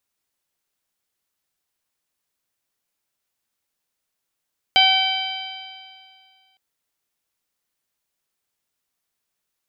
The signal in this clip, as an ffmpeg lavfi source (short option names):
-f lavfi -i "aevalsrc='0.141*pow(10,-3*t/2.14)*sin(2*PI*759.14*t)+0.0473*pow(10,-3*t/2.14)*sin(2*PI*1525.07*t)+0.126*pow(10,-3*t/2.14)*sin(2*PI*2304.49*t)+0.237*pow(10,-3*t/2.14)*sin(2*PI*3103.92*t)+0.0708*pow(10,-3*t/2.14)*sin(2*PI*3929.56*t)+0.0708*pow(10,-3*t/2.14)*sin(2*PI*4787.3*t)':d=1.81:s=44100"